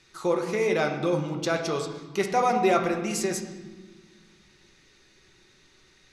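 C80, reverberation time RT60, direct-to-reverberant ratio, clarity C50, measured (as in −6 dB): 9.0 dB, 1.4 s, 2.5 dB, 7.5 dB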